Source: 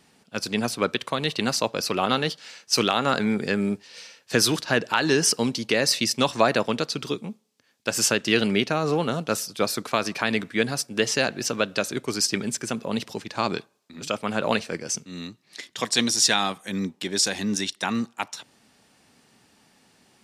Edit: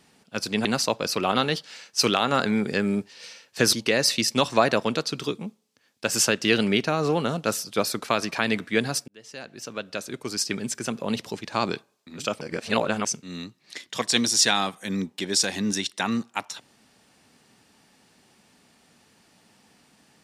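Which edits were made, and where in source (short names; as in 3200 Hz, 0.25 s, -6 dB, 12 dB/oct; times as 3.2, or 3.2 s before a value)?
0.65–1.39 cut
4.47–5.56 cut
10.91–12.88 fade in linear
14.24–14.88 reverse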